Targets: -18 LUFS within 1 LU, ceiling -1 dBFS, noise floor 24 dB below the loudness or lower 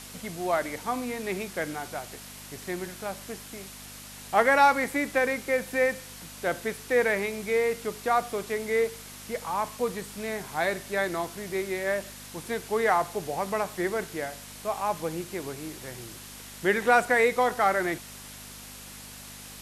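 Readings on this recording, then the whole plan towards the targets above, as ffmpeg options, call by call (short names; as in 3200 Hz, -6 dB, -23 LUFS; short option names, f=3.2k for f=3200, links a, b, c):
hum 50 Hz; harmonics up to 250 Hz; hum level -48 dBFS; noise floor -44 dBFS; noise floor target -52 dBFS; loudness -28.0 LUFS; peak -7.0 dBFS; loudness target -18.0 LUFS
-> -af "bandreject=f=50:t=h:w=4,bandreject=f=100:t=h:w=4,bandreject=f=150:t=h:w=4,bandreject=f=200:t=h:w=4,bandreject=f=250:t=h:w=4"
-af "afftdn=nr=8:nf=-44"
-af "volume=10dB,alimiter=limit=-1dB:level=0:latency=1"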